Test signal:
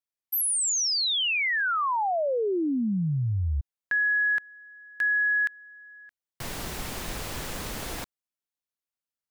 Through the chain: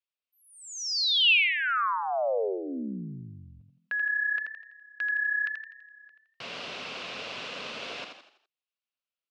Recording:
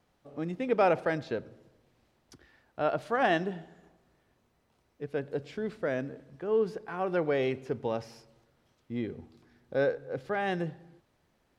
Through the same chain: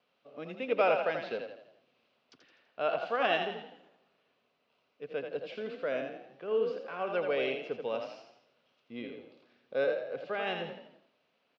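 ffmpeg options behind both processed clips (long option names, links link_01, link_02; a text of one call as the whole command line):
ffmpeg -i in.wav -filter_complex "[0:a]highpass=330,equalizer=frequency=330:width_type=q:width=4:gain=-10,equalizer=frequency=850:width_type=q:width=4:gain=-8,equalizer=frequency=1800:width_type=q:width=4:gain=-7,equalizer=frequency=2700:width_type=q:width=4:gain=7,lowpass=frequency=4600:width=0.5412,lowpass=frequency=4600:width=1.3066,asplit=2[link_01][link_02];[link_02]asplit=5[link_03][link_04][link_05][link_06][link_07];[link_03]adelay=83,afreqshift=32,volume=-6dB[link_08];[link_04]adelay=166,afreqshift=64,volume=-13.1dB[link_09];[link_05]adelay=249,afreqshift=96,volume=-20.3dB[link_10];[link_06]adelay=332,afreqshift=128,volume=-27.4dB[link_11];[link_07]adelay=415,afreqshift=160,volume=-34.5dB[link_12];[link_08][link_09][link_10][link_11][link_12]amix=inputs=5:normalize=0[link_13];[link_01][link_13]amix=inputs=2:normalize=0" out.wav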